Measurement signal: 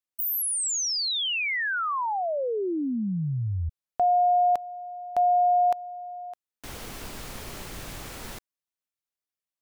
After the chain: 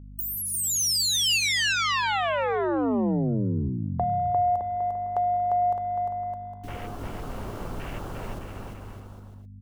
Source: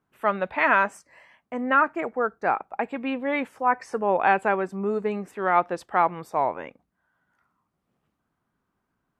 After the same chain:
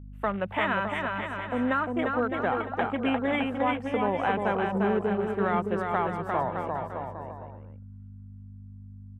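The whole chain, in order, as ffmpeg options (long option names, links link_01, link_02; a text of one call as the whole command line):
ffmpeg -i in.wav -filter_complex "[0:a]acrossover=split=200|6200[link_01][link_02][link_03];[link_01]acompressor=threshold=-35dB:ratio=4[link_04];[link_02]acompressor=threshold=-31dB:ratio=4[link_05];[link_03]acompressor=threshold=-35dB:ratio=4[link_06];[link_04][link_05][link_06]amix=inputs=3:normalize=0,afwtdn=0.00794,equalizer=frequency=2800:width=4.4:gain=4.5,bandreject=frequency=2500:width=27,aeval=exprs='val(0)+0.00501*(sin(2*PI*50*n/s)+sin(2*PI*2*50*n/s)/2+sin(2*PI*3*50*n/s)/3+sin(2*PI*4*50*n/s)/4+sin(2*PI*5*50*n/s)/5)':channel_layout=same,asplit=2[link_07][link_08];[link_08]aecho=0:1:350|612.5|809.4|957|1068:0.631|0.398|0.251|0.158|0.1[link_09];[link_07][link_09]amix=inputs=2:normalize=0,volume=4dB" out.wav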